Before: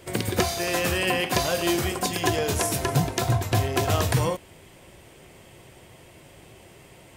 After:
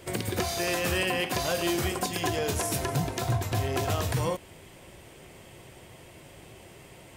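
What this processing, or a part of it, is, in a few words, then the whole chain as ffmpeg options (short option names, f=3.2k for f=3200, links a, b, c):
limiter into clipper: -af "alimiter=limit=-17.5dB:level=0:latency=1:release=220,asoftclip=type=hard:threshold=-19.5dB"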